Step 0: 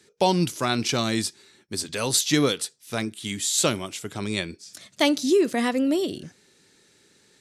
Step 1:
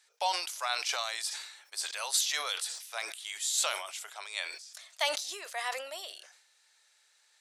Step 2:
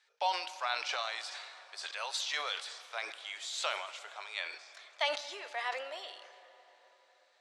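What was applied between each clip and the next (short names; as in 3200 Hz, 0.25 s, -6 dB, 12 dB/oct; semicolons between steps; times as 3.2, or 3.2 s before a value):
steep high-pass 660 Hz 36 dB/oct; sustainer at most 66 dB/s; gain -6.5 dB
BPF 150–3800 Hz; plate-style reverb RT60 4.2 s, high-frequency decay 0.6×, pre-delay 0 ms, DRR 12.5 dB; gain -1 dB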